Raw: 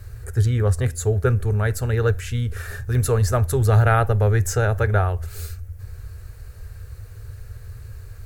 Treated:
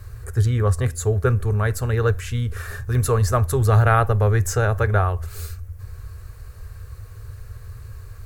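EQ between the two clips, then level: peaking EQ 1.1 kHz +9.5 dB 0.22 oct; 0.0 dB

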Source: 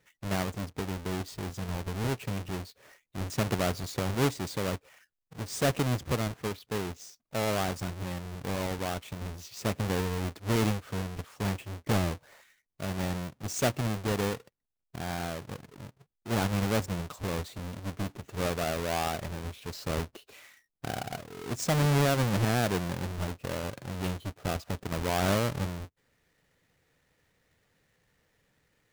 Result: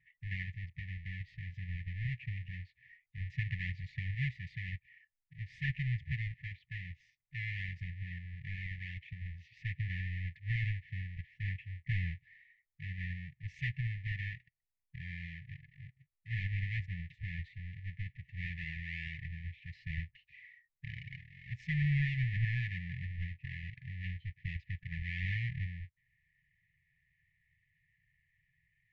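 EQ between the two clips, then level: brick-wall FIR band-stop 170–1700 Hz; four-pole ladder low-pass 2.4 kHz, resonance 50%; bass shelf 410 Hz +3.5 dB; +3.0 dB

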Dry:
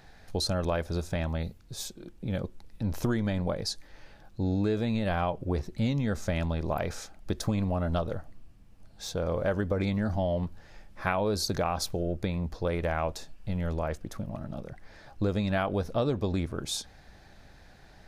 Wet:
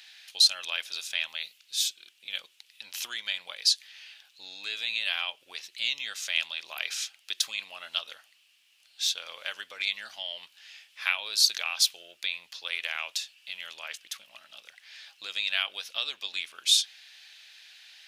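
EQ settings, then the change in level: resonant high-pass 2.9 kHz, resonance Q 3.2; +7.5 dB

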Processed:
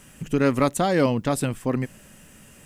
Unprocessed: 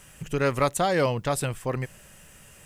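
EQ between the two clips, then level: peaking EQ 250 Hz +11.5 dB 0.84 oct; 0.0 dB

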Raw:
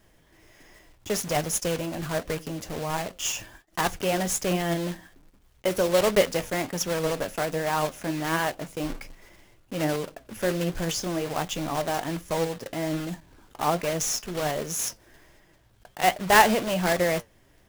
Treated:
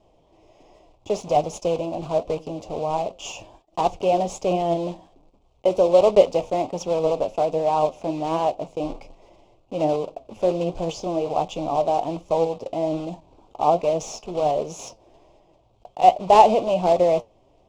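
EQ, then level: FFT filter 210 Hz 0 dB, 720 Hz +11 dB, 1.1 kHz +2 dB, 1.7 kHz -23 dB, 2.5 kHz -1 dB, 7.4 kHz -8 dB, 12 kHz -27 dB; -1.5 dB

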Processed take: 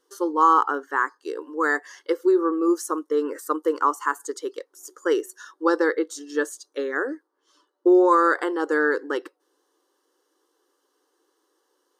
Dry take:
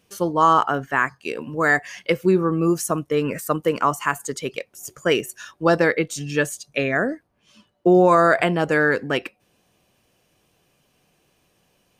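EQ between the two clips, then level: brick-wall FIR high-pass 270 Hz; treble shelf 8.6 kHz -11 dB; static phaser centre 660 Hz, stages 6; 0.0 dB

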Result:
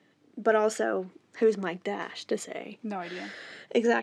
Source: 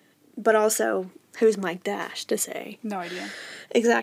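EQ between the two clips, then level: distance through air 100 m; -3.5 dB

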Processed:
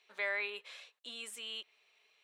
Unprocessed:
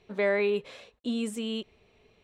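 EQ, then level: Bessel high-pass 1.7 kHz, order 2; dynamic bell 6.7 kHz, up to -5 dB, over -53 dBFS, Q 0.81; 0.0 dB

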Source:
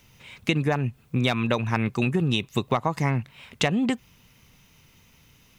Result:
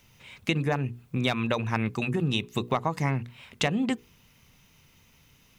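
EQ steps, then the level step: hum notches 60/120/180/240/300/360/420/480 Hz; -2.5 dB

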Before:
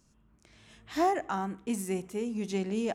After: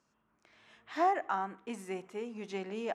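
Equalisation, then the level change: band-pass filter 1.2 kHz, Q 0.68; +1.0 dB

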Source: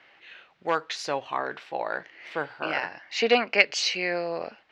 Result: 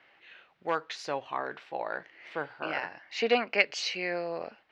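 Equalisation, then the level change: treble shelf 4.4 kHz -6 dB; -4.0 dB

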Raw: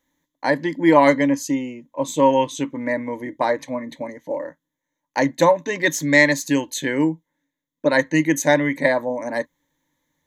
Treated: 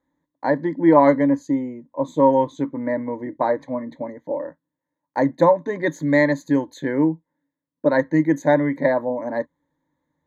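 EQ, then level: boxcar filter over 16 samples; high-pass 46 Hz; +1.0 dB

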